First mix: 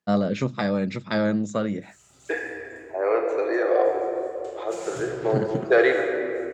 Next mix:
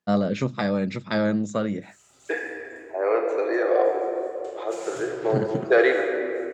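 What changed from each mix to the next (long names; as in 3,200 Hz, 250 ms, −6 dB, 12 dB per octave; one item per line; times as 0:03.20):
background: add bass and treble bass −9 dB, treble −1 dB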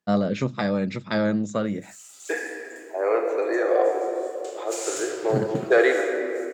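background: add spectral tilt +4.5 dB per octave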